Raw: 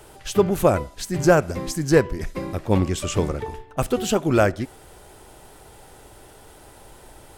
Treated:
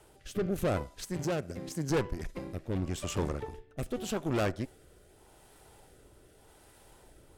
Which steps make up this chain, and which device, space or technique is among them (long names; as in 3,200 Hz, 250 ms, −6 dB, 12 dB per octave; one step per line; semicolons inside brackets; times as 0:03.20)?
overdriven rotary cabinet (tube saturation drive 20 dB, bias 0.8; rotating-speaker cabinet horn 0.85 Hz)
0:01.17–0:01.90: high-pass filter 83 Hz
level −4 dB